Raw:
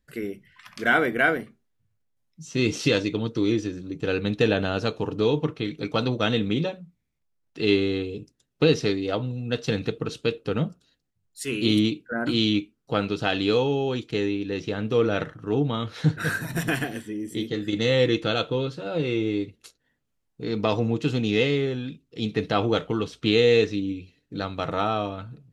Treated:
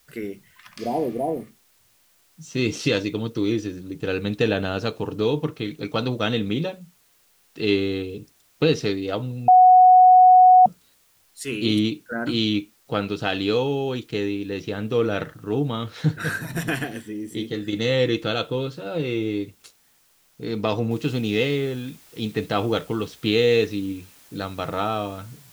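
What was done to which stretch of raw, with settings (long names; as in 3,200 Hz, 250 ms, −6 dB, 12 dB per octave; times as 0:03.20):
0:00.82–0:01.44: healed spectral selection 1,000–8,200 Hz
0:09.48–0:10.66: beep over 737 Hz −8 dBFS
0:20.91: noise floor change −61 dB −52 dB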